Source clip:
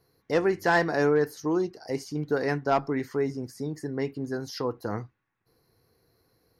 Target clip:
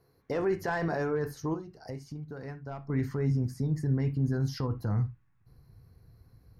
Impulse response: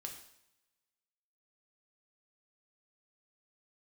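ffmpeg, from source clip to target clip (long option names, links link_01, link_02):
-filter_complex "[0:a]asubboost=boost=10:cutoff=130,asettb=1/sr,asplit=3[link_01][link_02][link_03];[link_01]atrim=end=1.544[link_04];[link_02]atrim=start=1.54:end=2.9,asetpts=PTS-STARTPTS,afade=type=in:duration=0.004:curve=qsin,afade=type=out:start_time=1.356:duration=0.004:curve=qsin,acompressor=threshold=-38dB:ratio=12[link_05];[link_03]atrim=start=2.896[link_06];[link_04][link_05]acrossfade=duration=0.004:curve1=hsin:curve2=qsin[link_07];[link_07][link_06]acrossfade=duration=0.004:curve1=qsin:curve2=hsin,alimiter=limit=-23dB:level=0:latency=1:release=20,asplit=2[link_08][link_09];[link_09]equalizer=frequency=2000:width=7.9:gain=-5[link_10];[1:a]atrim=start_sample=2205,atrim=end_sample=3528,lowpass=2400[link_11];[link_10][link_11]afir=irnorm=-1:irlink=0,volume=3dB[link_12];[link_08][link_12]amix=inputs=2:normalize=0,volume=-4dB"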